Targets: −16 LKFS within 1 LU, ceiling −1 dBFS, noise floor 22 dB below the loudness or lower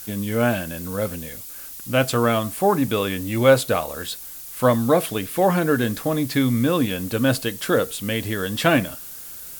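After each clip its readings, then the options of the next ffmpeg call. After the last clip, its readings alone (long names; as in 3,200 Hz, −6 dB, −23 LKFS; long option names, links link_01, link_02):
background noise floor −37 dBFS; target noise floor −44 dBFS; integrated loudness −21.5 LKFS; sample peak −2.5 dBFS; target loudness −16.0 LKFS
→ -af "afftdn=noise_reduction=7:noise_floor=-37"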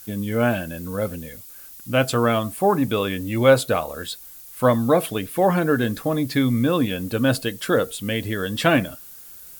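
background noise floor −42 dBFS; target noise floor −44 dBFS
→ -af "afftdn=noise_reduction=6:noise_floor=-42"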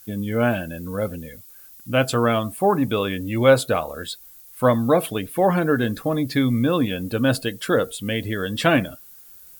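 background noise floor −46 dBFS; integrated loudness −21.5 LKFS; sample peak −2.5 dBFS; target loudness −16.0 LKFS
→ -af "volume=5.5dB,alimiter=limit=-1dB:level=0:latency=1"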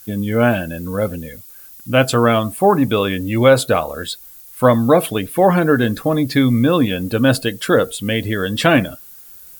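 integrated loudness −16.5 LKFS; sample peak −1.0 dBFS; background noise floor −41 dBFS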